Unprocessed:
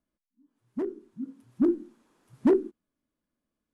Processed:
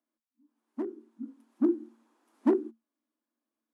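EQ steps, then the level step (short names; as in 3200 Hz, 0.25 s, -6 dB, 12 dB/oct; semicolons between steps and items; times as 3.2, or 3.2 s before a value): rippled Chebyshev high-pass 220 Hz, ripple 6 dB; 0.0 dB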